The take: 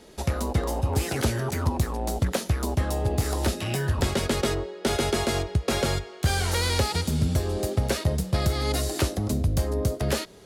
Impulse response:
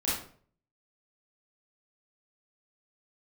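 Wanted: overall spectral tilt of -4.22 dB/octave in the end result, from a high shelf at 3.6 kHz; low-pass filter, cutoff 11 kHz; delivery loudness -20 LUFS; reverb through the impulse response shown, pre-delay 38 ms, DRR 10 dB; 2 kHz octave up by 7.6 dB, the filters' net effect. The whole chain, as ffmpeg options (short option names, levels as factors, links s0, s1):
-filter_complex "[0:a]lowpass=11000,equalizer=f=2000:t=o:g=8.5,highshelf=f=3600:g=3.5,asplit=2[s0][s1];[1:a]atrim=start_sample=2205,adelay=38[s2];[s1][s2]afir=irnorm=-1:irlink=0,volume=0.133[s3];[s0][s3]amix=inputs=2:normalize=0,volume=1.58"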